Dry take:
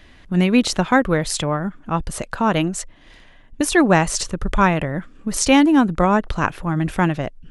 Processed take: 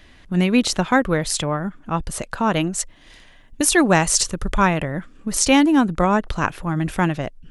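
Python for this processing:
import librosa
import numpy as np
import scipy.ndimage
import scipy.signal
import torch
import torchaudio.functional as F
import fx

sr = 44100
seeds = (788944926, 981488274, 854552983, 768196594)

y = fx.high_shelf(x, sr, hz=4100.0, db=fx.steps((0.0, 3.5), (2.78, 10.0), (4.47, 4.5)))
y = y * 10.0 ** (-1.5 / 20.0)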